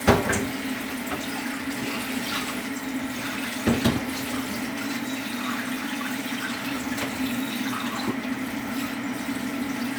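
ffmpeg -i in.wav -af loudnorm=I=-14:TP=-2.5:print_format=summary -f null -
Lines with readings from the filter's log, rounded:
Input Integrated:    -28.0 LUFS
Input True Peak:      -5.1 dBTP
Input LRA:             2.0 LU
Input Threshold:     -38.0 LUFS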